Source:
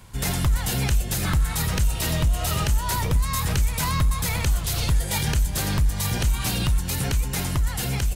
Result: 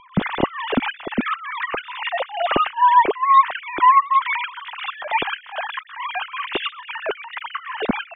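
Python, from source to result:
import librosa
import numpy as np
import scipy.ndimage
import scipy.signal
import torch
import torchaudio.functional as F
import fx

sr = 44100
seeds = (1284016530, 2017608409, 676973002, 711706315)

y = fx.sine_speech(x, sr)
y = fx.tilt_eq(y, sr, slope=-2.5)
y = y * 10.0 ** (1.0 / 20.0)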